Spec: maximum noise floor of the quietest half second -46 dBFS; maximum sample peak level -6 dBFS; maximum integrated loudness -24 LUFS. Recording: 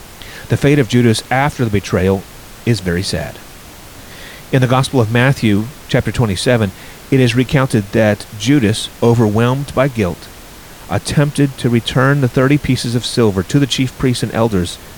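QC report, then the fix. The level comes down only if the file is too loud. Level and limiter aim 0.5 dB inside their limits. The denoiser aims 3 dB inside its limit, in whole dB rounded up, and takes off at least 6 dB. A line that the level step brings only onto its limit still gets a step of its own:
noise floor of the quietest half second -35 dBFS: fail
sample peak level -1.0 dBFS: fail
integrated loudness -14.5 LUFS: fail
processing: denoiser 6 dB, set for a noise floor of -35 dBFS; gain -10 dB

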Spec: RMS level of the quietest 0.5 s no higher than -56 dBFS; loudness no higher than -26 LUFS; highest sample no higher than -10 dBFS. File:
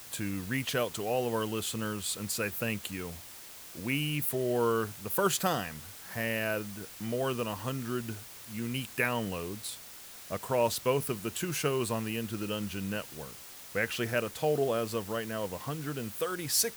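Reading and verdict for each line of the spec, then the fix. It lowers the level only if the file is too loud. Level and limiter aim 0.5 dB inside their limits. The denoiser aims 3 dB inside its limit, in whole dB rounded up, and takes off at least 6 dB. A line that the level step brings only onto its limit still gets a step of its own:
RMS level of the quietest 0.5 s -48 dBFS: fail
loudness -32.5 LUFS: OK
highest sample -13.0 dBFS: OK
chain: denoiser 11 dB, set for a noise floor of -48 dBFS

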